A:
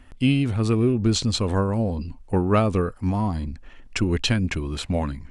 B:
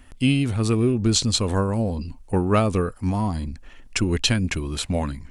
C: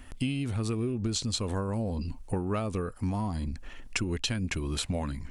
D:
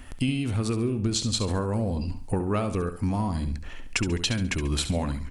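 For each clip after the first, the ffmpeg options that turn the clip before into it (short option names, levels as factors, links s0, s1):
-af "highshelf=f=5900:g=11"
-af "acompressor=threshold=0.0355:ratio=6,volume=1.12"
-af "aecho=1:1:69|138|207|276:0.299|0.0985|0.0325|0.0107,volume=1.58"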